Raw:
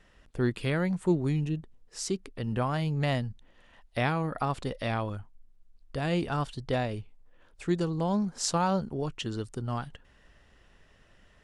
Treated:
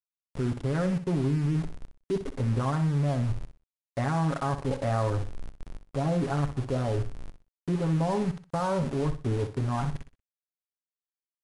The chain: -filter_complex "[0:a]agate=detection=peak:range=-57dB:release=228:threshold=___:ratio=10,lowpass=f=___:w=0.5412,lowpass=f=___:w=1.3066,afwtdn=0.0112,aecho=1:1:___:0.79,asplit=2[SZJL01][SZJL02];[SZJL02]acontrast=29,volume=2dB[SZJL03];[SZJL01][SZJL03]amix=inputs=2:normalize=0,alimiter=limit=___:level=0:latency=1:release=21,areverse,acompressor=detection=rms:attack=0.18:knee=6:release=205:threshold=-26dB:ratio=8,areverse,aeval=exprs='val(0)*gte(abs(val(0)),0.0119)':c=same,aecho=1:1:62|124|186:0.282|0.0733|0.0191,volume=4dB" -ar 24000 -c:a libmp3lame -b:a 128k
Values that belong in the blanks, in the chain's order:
-54dB, 1.6k, 1.6k, 7.3, -9.5dB